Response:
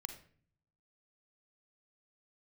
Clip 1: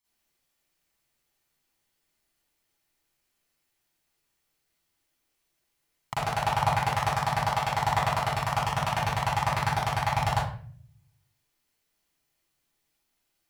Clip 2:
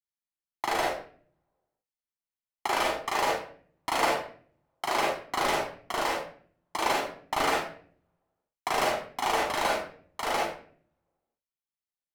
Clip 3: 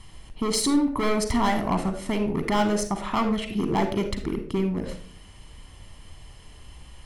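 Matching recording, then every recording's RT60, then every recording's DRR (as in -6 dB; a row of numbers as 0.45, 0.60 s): 3; 0.45, 0.50, 0.50 s; -10.0, -3.0, 7.0 dB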